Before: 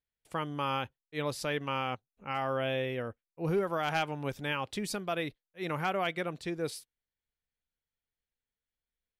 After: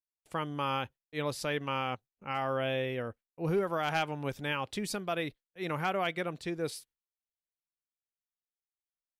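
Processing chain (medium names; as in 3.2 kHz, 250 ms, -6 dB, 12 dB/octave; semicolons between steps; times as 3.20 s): gate with hold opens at -53 dBFS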